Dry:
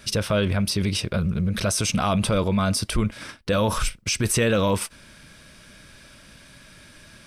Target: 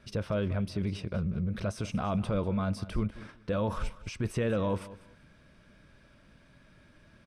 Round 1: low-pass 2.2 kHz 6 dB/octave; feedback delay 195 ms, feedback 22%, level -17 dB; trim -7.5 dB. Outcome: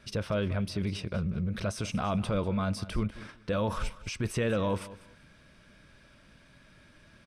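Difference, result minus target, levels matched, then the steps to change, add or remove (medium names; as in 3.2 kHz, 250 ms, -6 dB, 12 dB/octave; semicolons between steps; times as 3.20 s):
2 kHz band +3.0 dB
change: low-pass 1.1 kHz 6 dB/octave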